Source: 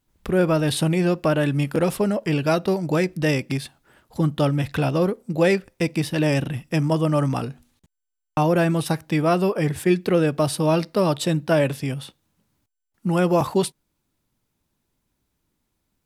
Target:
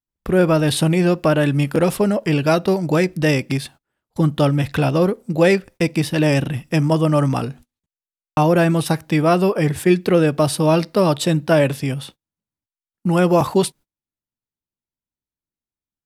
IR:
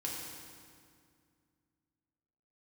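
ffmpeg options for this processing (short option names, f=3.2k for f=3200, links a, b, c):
-af "agate=range=-26dB:threshold=-44dB:ratio=16:detection=peak,volume=4dB"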